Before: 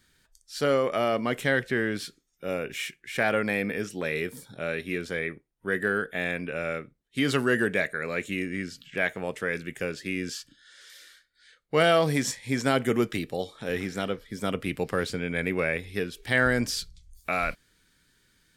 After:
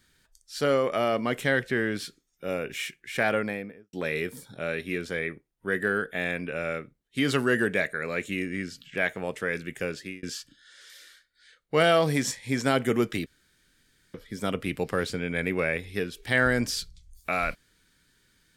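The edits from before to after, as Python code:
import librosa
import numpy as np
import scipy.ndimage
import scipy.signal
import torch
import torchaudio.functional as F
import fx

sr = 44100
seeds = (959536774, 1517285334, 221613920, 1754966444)

y = fx.studio_fade_out(x, sr, start_s=3.26, length_s=0.67)
y = fx.edit(y, sr, fx.fade_out_span(start_s=9.97, length_s=0.26),
    fx.room_tone_fill(start_s=13.26, length_s=0.88), tone=tone)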